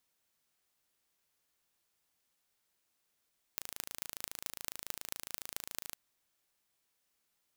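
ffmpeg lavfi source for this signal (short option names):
-f lavfi -i "aevalsrc='0.376*eq(mod(n,1621),0)*(0.5+0.5*eq(mod(n,9726),0))':d=2.36:s=44100"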